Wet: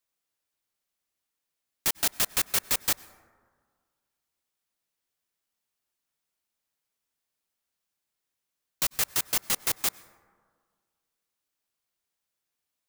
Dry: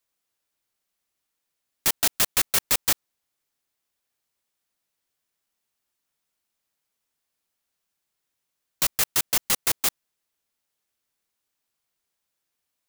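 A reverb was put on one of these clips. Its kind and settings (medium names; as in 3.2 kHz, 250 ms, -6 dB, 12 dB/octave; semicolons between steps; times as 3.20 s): plate-style reverb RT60 1.8 s, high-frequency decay 0.3×, pre-delay 85 ms, DRR 19.5 dB; trim -4 dB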